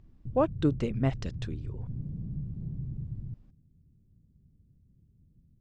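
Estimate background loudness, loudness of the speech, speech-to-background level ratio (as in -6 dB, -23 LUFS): -39.5 LUFS, -31.0 LUFS, 8.5 dB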